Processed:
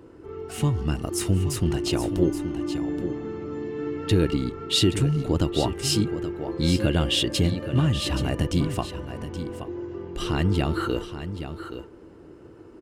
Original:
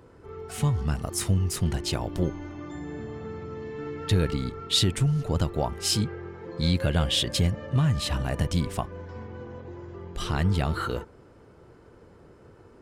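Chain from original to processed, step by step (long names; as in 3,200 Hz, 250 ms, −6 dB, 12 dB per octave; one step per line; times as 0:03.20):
hollow resonant body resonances 320/2,800 Hz, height 12 dB, ringing for 35 ms
on a send: single-tap delay 825 ms −10.5 dB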